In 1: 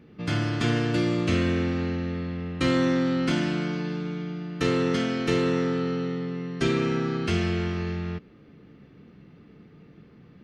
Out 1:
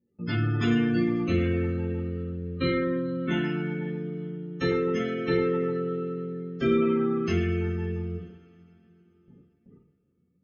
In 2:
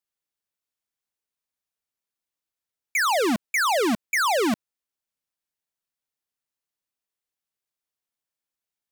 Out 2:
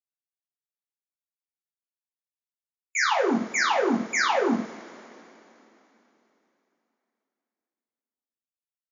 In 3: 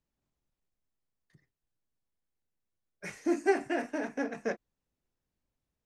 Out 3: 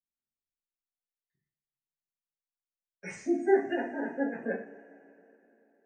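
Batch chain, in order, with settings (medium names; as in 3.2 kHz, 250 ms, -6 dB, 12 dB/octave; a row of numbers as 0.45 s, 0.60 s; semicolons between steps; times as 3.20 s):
hum notches 50/100/150/200/250/300 Hz; spectral gate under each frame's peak -20 dB strong; gate with hold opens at -41 dBFS; peaking EQ 7.3 kHz +6 dB 1.1 oct; two-slope reverb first 0.42 s, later 3.4 s, from -22 dB, DRR -5.5 dB; peak normalisation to -12 dBFS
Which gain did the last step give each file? -7.0 dB, -7.5 dB, -5.5 dB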